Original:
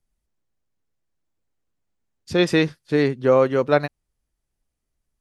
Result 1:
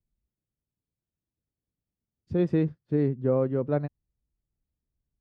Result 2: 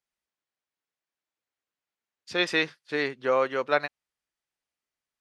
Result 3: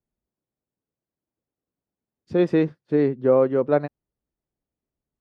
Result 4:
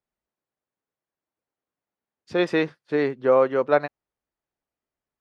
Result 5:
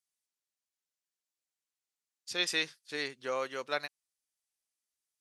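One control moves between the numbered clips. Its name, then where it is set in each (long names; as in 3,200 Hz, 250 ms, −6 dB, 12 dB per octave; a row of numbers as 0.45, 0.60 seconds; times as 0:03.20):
resonant band-pass, frequency: 100, 2,300, 320, 880, 7,600 Hertz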